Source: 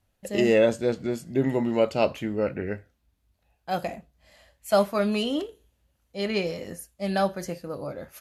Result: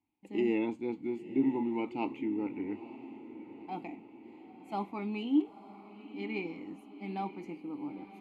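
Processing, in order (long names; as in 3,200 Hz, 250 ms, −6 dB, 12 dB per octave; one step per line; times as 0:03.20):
formant filter u
parametric band 5,400 Hz −8.5 dB 0.32 octaves
on a send: feedback delay with all-pass diffusion 926 ms, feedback 60%, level −14.5 dB
on the sum: level +4.5 dB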